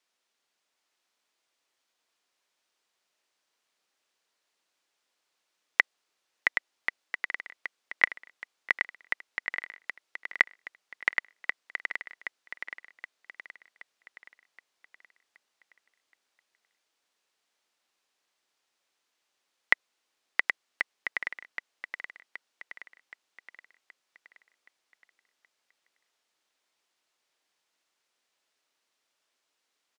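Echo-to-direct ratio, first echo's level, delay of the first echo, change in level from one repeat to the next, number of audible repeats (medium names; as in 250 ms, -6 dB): -6.0 dB, -7.0 dB, 773 ms, -6.0 dB, 5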